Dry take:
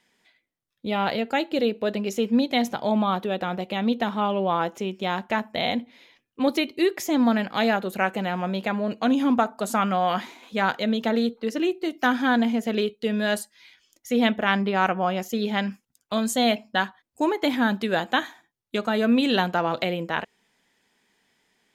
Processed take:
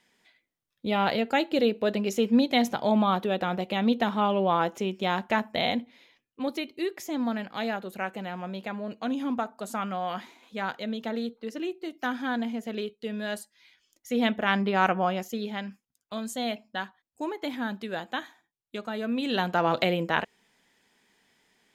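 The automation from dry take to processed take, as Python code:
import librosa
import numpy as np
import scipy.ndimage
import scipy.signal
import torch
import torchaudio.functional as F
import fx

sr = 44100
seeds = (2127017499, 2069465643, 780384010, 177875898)

y = fx.gain(x, sr, db=fx.line((5.55, -0.5), (6.5, -8.5), (13.37, -8.5), (14.96, -0.5), (15.61, -9.5), (19.14, -9.5), (19.69, 1.0)))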